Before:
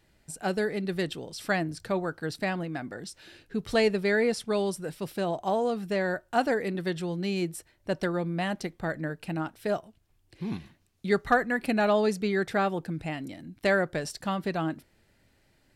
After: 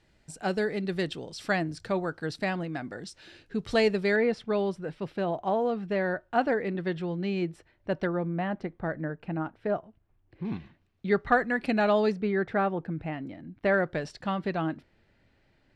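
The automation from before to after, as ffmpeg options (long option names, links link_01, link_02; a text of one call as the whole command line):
ffmpeg -i in.wav -af "asetnsamples=nb_out_samples=441:pad=0,asendcmd='4.16 lowpass f 2800;8.07 lowpass f 1700;10.45 lowpass f 2900;11.34 lowpass f 5100;12.12 lowpass f 2000;13.74 lowpass f 3600',lowpass=7000" out.wav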